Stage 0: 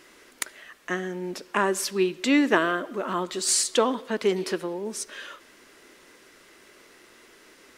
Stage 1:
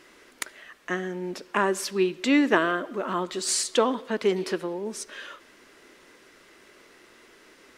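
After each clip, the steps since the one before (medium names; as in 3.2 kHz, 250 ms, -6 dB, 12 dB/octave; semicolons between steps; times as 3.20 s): treble shelf 6.5 kHz -6 dB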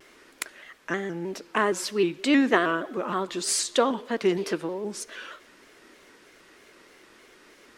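vibrato with a chosen wave square 3.2 Hz, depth 100 cents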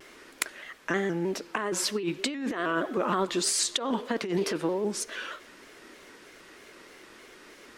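compressor with a negative ratio -28 dBFS, ratio -1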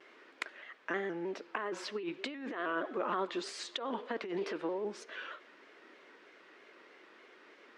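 band-pass 310–3100 Hz; trim -6 dB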